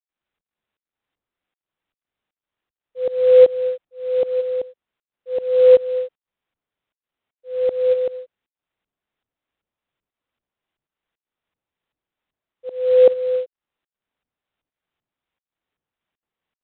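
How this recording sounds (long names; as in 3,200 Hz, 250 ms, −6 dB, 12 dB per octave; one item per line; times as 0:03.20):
tremolo saw up 2.6 Hz, depth 90%
IMA ADPCM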